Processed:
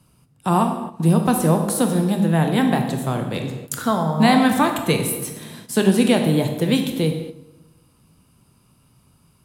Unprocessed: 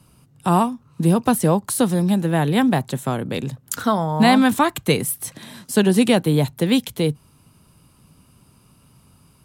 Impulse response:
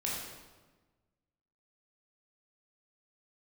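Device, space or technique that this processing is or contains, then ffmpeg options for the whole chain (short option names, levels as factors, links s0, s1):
keyed gated reverb: -filter_complex "[0:a]asplit=3[s0][s1][s2];[1:a]atrim=start_sample=2205[s3];[s1][s3]afir=irnorm=-1:irlink=0[s4];[s2]apad=whole_len=416712[s5];[s4][s5]sidechaingate=range=0.355:threshold=0.00708:ratio=16:detection=peak,volume=0.668[s6];[s0][s6]amix=inputs=2:normalize=0,volume=0.531"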